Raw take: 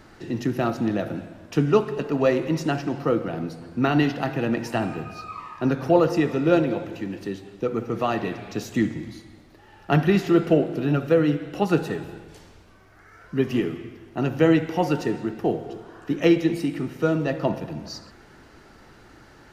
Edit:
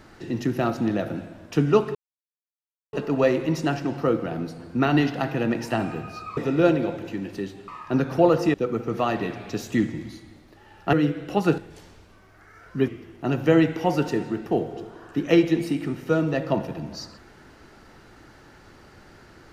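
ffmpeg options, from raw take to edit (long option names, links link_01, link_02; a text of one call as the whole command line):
ffmpeg -i in.wav -filter_complex "[0:a]asplit=8[link_01][link_02][link_03][link_04][link_05][link_06][link_07][link_08];[link_01]atrim=end=1.95,asetpts=PTS-STARTPTS,afade=type=out:start_time=1.946:duration=0.004:curve=hsin,apad=pad_dur=0.98[link_09];[link_02]atrim=start=1.95:end=5.392,asetpts=PTS-STARTPTS,afade=type=in:duration=0.004:curve=hsin[link_10];[link_03]atrim=start=6.248:end=7.562[link_11];[link_04]atrim=start=5.388:end=6.252[link_12];[link_05]atrim=start=7.558:end=9.952[link_13];[link_06]atrim=start=11.178:end=11.832[link_14];[link_07]atrim=start=12.158:end=13.462[link_15];[link_08]atrim=start=13.808[link_16];[link_09][link_10]concat=n=2:v=0:a=1[link_17];[link_17][link_11]acrossfade=duration=0.004:curve1=hsin:curve2=hsin[link_18];[link_18][link_12]acrossfade=duration=0.004:curve1=hsin:curve2=hsin[link_19];[link_19][link_13]acrossfade=duration=0.004:curve1=hsin:curve2=hsin[link_20];[link_20][link_14]acrossfade=duration=0.004:curve1=hsin:curve2=hsin[link_21];[link_21][link_15]acrossfade=duration=0.004:curve1=hsin:curve2=hsin[link_22];[link_22][link_16]acrossfade=duration=0.004:curve1=hsin:curve2=hsin" out.wav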